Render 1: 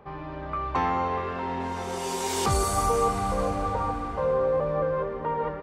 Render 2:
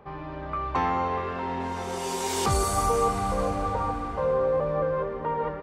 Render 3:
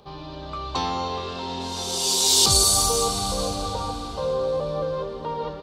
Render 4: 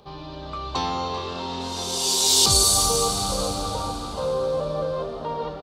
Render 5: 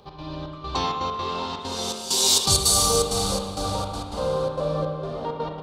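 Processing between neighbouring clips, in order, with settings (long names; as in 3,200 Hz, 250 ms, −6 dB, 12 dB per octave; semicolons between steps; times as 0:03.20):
no processing that can be heard
high shelf with overshoot 2,800 Hz +12.5 dB, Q 3
echo with shifted repeats 390 ms, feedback 42%, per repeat +87 Hz, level −14 dB
gate pattern "x.xxx..xxx.x.xxx" 164 BPM −12 dB; spring reverb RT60 1.3 s, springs 32/41 ms, chirp 25 ms, DRR 2.5 dB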